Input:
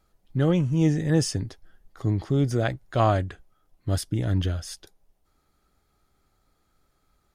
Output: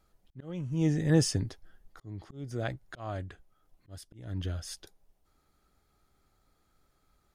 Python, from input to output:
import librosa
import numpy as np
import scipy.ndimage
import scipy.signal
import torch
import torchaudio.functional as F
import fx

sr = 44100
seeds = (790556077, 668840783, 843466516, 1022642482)

y = fx.auto_swell(x, sr, attack_ms=711.0)
y = F.gain(torch.from_numpy(y), -2.0).numpy()